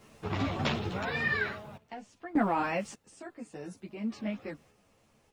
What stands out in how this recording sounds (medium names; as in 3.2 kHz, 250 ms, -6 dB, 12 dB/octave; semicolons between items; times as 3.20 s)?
a quantiser's noise floor 12-bit, dither triangular; random-step tremolo 1.7 Hz, depth 90%; a shimmering, thickened sound